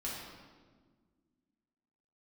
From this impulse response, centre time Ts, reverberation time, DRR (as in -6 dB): 84 ms, 1.6 s, -7.0 dB